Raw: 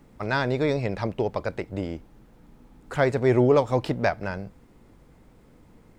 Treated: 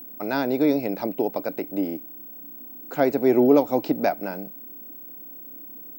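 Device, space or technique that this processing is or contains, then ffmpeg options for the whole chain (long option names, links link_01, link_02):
old television with a line whistle: -af "highpass=frequency=180:width=0.5412,highpass=frequency=180:width=1.3066,equalizer=frequency=290:width_type=q:width=4:gain=10,equalizer=frequency=730:width_type=q:width=4:gain=4,equalizer=frequency=1100:width_type=q:width=4:gain=-7,equalizer=frequency=1800:width_type=q:width=4:gain=-8,equalizer=frequency=3200:width_type=q:width=4:gain=-6,lowpass=frequency=7300:width=0.5412,lowpass=frequency=7300:width=1.3066,aeval=exprs='val(0)+0.0126*sin(2*PI*15734*n/s)':channel_layout=same"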